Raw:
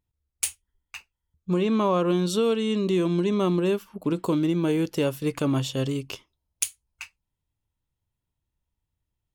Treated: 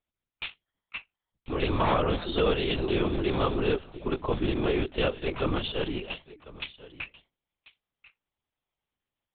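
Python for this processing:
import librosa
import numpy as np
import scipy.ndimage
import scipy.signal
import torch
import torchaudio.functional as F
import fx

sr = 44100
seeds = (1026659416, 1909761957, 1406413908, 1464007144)

p1 = fx.hum_notches(x, sr, base_hz=60, count=7)
p2 = (np.mod(10.0 ** (14.5 / 20.0) * p1 + 1.0, 2.0) - 1.0) / 10.0 ** (14.5 / 20.0)
p3 = p1 + F.gain(torch.from_numpy(p2), -6.0).numpy()
p4 = fx.highpass(p3, sr, hz=230.0, slope=6)
p5 = p4 + 10.0 ** (-19.0 / 20.0) * np.pad(p4, (int(1044 * sr / 1000.0), 0))[:len(p4)]
p6 = fx.lpc_vocoder(p5, sr, seeds[0], excitation='whisper', order=8)
y = fx.low_shelf(p6, sr, hz=470.0, db=-6.5)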